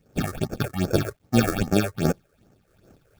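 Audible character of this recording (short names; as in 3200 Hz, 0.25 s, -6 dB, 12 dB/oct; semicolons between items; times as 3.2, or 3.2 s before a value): aliases and images of a low sample rate 1000 Hz, jitter 0%; phasing stages 6, 2.5 Hz, lowest notch 200–3800 Hz; a quantiser's noise floor 12-bit, dither none; noise-modulated level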